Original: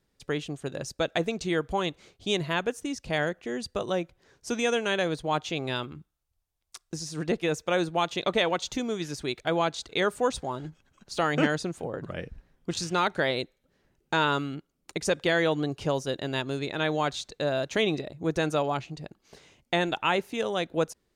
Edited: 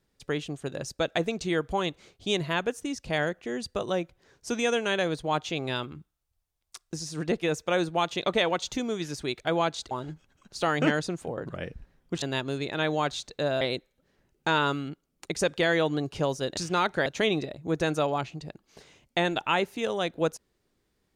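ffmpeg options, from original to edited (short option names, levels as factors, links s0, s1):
-filter_complex "[0:a]asplit=6[s0][s1][s2][s3][s4][s5];[s0]atrim=end=9.912[s6];[s1]atrim=start=10.468:end=12.782[s7];[s2]atrim=start=16.228:end=17.622[s8];[s3]atrim=start=13.268:end=16.232[s9];[s4]atrim=start=12.778:end=13.272[s10];[s5]atrim=start=17.618[s11];[s6][s7]acrossfade=d=0.004:c1=hsin:c2=hsin[s12];[s12][s8]acrossfade=d=0.004:c1=hsin:c2=hsin[s13];[s13][s9]acrossfade=d=0.004:c1=hsin:c2=hsin[s14];[s14][s10]acrossfade=d=0.004:c1=hsin:c2=hsin[s15];[s15][s11]acrossfade=d=0.004:c1=hsin:c2=hsin"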